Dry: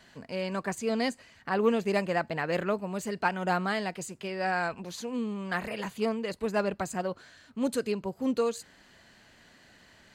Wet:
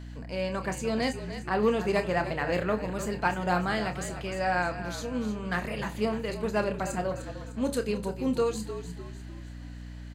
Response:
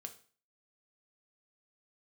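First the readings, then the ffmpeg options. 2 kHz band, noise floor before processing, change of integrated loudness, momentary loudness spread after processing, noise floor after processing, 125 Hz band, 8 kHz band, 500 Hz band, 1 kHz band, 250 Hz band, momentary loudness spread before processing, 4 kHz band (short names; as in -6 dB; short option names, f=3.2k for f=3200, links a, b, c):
+1.0 dB, -59 dBFS, +1.0 dB, 12 LU, -41 dBFS, +5.0 dB, +1.0 dB, +1.0 dB, +1.0 dB, +1.0 dB, 8 LU, +1.0 dB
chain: -filter_complex "[0:a]asplit=6[a][b][c][d][e][f];[b]adelay=302,afreqshift=-45,volume=-11dB[g];[c]adelay=604,afreqshift=-90,volume=-17.7dB[h];[d]adelay=906,afreqshift=-135,volume=-24.5dB[i];[e]adelay=1208,afreqshift=-180,volume=-31.2dB[j];[f]adelay=1510,afreqshift=-225,volume=-38dB[k];[a][g][h][i][j][k]amix=inputs=6:normalize=0,asplit=2[l][m];[1:a]atrim=start_sample=2205,asetrate=52920,aresample=44100,adelay=28[n];[m][n]afir=irnorm=-1:irlink=0,volume=-2dB[o];[l][o]amix=inputs=2:normalize=0,aeval=exprs='val(0)+0.01*(sin(2*PI*60*n/s)+sin(2*PI*2*60*n/s)/2+sin(2*PI*3*60*n/s)/3+sin(2*PI*4*60*n/s)/4+sin(2*PI*5*60*n/s)/5)':c=same"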